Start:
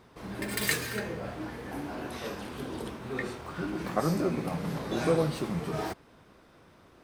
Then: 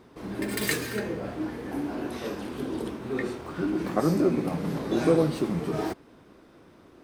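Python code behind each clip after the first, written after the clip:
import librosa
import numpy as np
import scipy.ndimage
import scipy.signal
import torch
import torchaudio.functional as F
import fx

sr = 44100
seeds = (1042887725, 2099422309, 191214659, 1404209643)

y = fx.peak_eq(x, sr, hz=310.0, db=8.0, octaves=1.2)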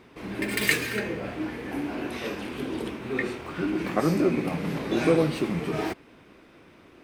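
y = fx.peak_eq(x, sr, hz=2400.0, db=9.5, octaves=0.91)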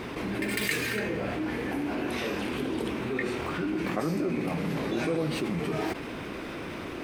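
y = fx.env_flatten(x, sr, amount_pct=70)
y = y * librosa.db_to_amplitude(-9.0)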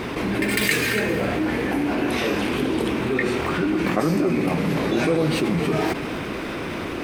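y = fx.echo_feedback(x, sr, ms=260, feedback_pct=36, wet_db=-14.0)
y = y * librosa.db_to_amplitude(8.0)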